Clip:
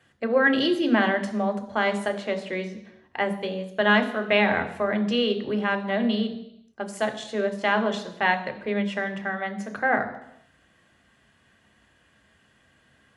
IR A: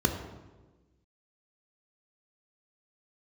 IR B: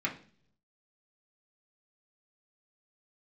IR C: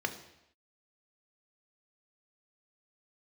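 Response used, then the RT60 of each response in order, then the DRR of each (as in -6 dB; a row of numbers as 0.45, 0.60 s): C; 1.3 s, 0.50 s, not exponential; 4.0, -3.5, 6.0 dB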